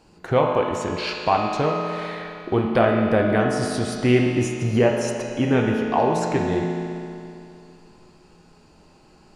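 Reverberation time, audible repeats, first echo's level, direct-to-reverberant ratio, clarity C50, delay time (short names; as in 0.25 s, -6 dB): 2.6 s, none, none, -0.5 dB, 1.5 dB, none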